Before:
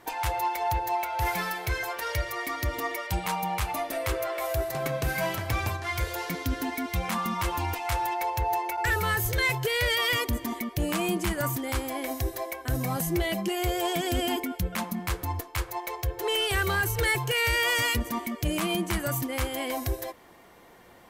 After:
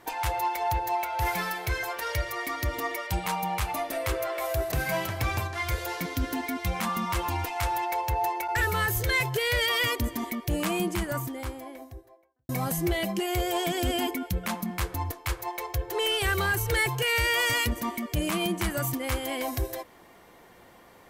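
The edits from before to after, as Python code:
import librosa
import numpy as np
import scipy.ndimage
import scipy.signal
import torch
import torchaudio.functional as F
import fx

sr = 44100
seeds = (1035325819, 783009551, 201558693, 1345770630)

y = fx.studio_fade_out(x, sr, start_s=10.92, length_s=1.86)
y = fx.edit(y, sr, fx.cut(start_s=4.72, length_s=0.29), tone=tone)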